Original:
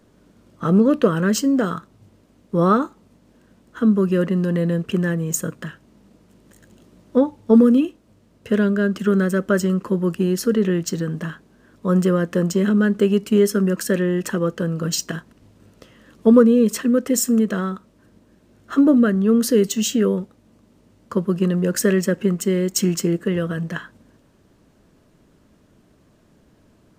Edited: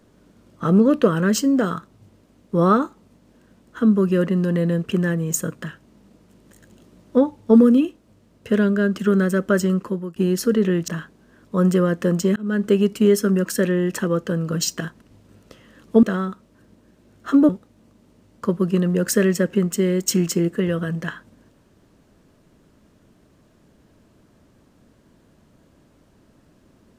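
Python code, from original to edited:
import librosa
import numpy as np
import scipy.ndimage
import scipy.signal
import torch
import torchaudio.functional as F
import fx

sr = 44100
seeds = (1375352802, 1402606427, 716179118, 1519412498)

y = fx.edit(x, sr, fx.fade_out_to(start_s=9.76, length_s=0.4, floor_db=-21.0),
    fx.cut(start_s=10.88, length_s=0.31),
    fx.fade_in_span(start_s=12.67, length_s=0.29),
    fx.cut(start_s=16.34, length_s=1.13),
    fx.cut(start_s=18.93, length_s=1.24), tone=tone)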